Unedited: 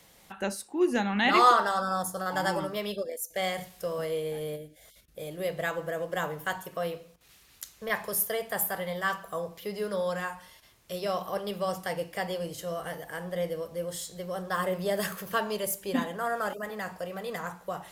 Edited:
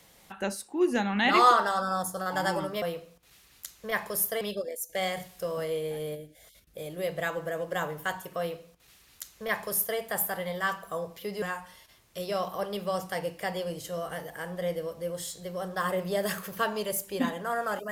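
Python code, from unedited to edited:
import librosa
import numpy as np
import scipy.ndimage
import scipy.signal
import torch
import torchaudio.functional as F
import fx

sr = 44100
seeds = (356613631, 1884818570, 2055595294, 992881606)

y = fx.edit(x, sr, fx.duplicate(start_s=6.8, length_s=1.59, to_s=2.82),
    fx.cut(start_s=9.83, length_s=0.33), tone=tone)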